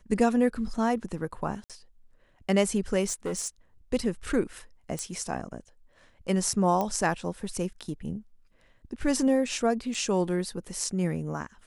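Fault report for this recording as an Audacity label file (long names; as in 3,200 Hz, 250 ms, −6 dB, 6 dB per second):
1.640000	1.700000	drop-out 57 ms
3.080000	3.480000	clipping −27 dBFS
4.990000	4.990000	click −19 dBFS
6.810000	6.810000	click −16 dBFS
9.940000	9.950000	drop-out 5.4 ms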